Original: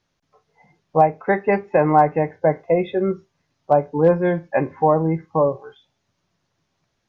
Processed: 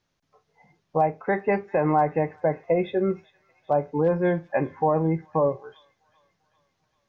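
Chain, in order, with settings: peak limiter -9.5 dBFS, peak gain reduction 4.5 dB; feedback echo behind a high-pass 394 ms, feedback 55%, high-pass 2.3 kHz, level -17 dB; trim -3 dB

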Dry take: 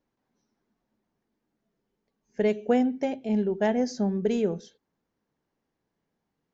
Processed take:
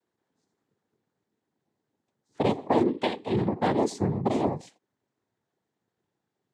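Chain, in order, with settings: 2.87–3.49 s: high-order bell 1.8 kHz +10 dB 1 oct; noise-vocoded speech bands 6

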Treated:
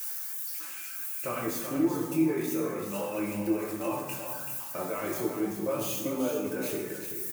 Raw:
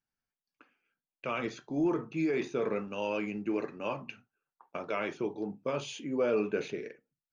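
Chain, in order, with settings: zero-crossing glitches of -30.5 dBFS; peaking EQ 3.7 kHz -9 dB 1.7 oct; peak limiter -28.5 dBFS, peak gain reduction 9 dB; reverb removal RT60 1.7 s; delay 383 ms -7.5 dB; reverberation RT60 1.3 s, pre-delay 4 ms, DRR -2.5 dB; trim +3 dB

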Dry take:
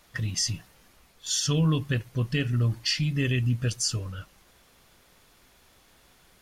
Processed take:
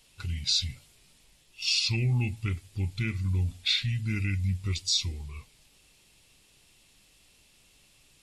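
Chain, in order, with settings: tape speed -22%; FFT filter 130 Hz 0 dB, 1.5 kHz -10 dB, 2.6 kHz +4 dB; trim -3 dB

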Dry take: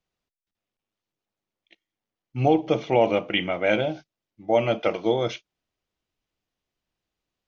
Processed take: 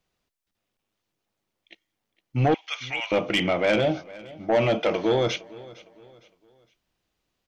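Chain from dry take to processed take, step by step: 2.54–3.12 s: high-pass 1.5 kHz 24 dB/octave; in parallel at +1 dB: peak limiter -20 dBFS, peak gain reduction 11.5 dB; on the sum: saturation -14.5 dBFS, distortion -13 dB; feedback delay 459 ms, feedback 37%, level -20.5 dB

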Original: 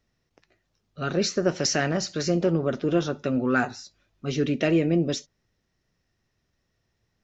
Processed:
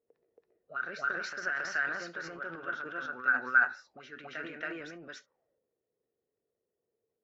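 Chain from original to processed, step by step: auto-wah 450–1500 Hz, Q 8.2, up, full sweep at -26 dBFS; reverse echo 276 ms -3.5 dB; transient shaper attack +2 dB, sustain +8 dB; trim +3.5 dB

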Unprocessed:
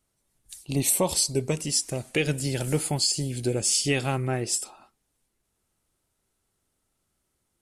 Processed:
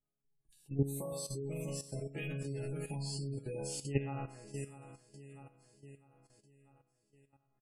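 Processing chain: 4.18–4.62 s: compressor with a negative ratio -32 dBFS, ratio -1; peaking EQ 6.2 kHz -10.5 dB 2.7 oct; chord resonator C#3 minor, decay 0.78 s; feedback delay 647 ms, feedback 52%, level -12.5 dB; level held to a coarse grid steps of 13 dB; spectral gate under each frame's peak -30 dB strong; bass shelf 190 Hz +4.5 dB; trim +11 dB

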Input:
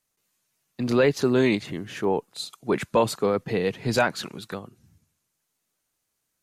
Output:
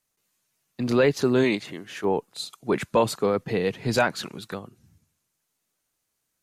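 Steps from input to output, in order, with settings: 1.43–2.03 s: high-pass 180 Hz -> 750 Hz 6 dB/octave

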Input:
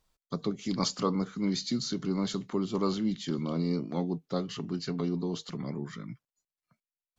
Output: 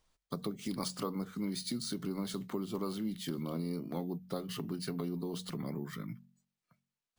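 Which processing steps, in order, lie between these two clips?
de-hum 45.81 Hz, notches 5; compression 3:1, threshold -35 dBFS, peak gain reduction 10 dB; sample-and-hold 3×

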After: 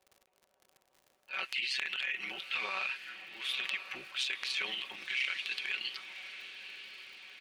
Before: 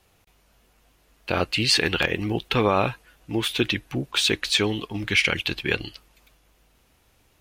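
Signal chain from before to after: auto-wah 520–2300 Hz, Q 2.2, up, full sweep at -27 dBFS; AM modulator 130 Hz, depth 60%; comb 5.3 ms, depth 68%; transient shaper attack -12 dB, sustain +9 dB; tilt EQ +2.5 dB/octave; crackle 87 per s -48 dBFS; compression, threshold -32 dBFS, peak gain reduction 15 dB; on a send: echo that smears into a reverb 1037 ms, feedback 57%, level -11.5 dB

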